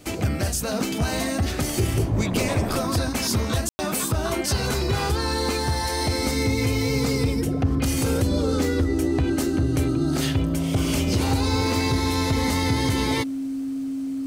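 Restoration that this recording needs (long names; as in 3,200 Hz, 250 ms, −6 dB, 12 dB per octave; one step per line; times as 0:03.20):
notch filter 270 Hz, Q 30
ambience match 0:03.69–0:03.79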